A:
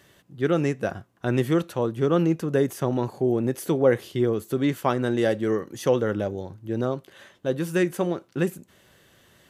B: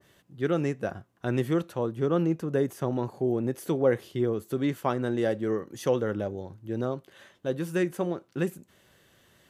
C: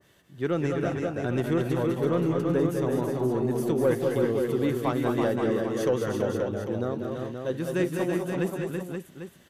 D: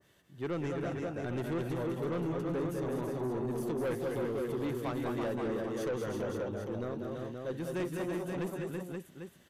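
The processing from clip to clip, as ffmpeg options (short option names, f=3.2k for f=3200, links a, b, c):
-af "adynamicequalizer=threshold=0.01:dfrequency=1700:dqfactor=0.7:tfrequency=1700:tqfactor=0.7:attack=5:release=100:ratio=0.375:range=2.5:mode=cutabove:tftype=highshelf,volume=-4dB"
-filter_complex "[0:a]asoftclip=type=tanh:threshold=-14.5dB,asplit=2[a][b];[b]aecho=0:1:198|211|331|370|528|797:0.447|0.422|0.562|0.266|0.473|0.266[c];[a][c]amix=inputs=2:normalize=0"
-af "asoftclip=type=tanh:threshold=-23.5dB,volume=-5.5dB"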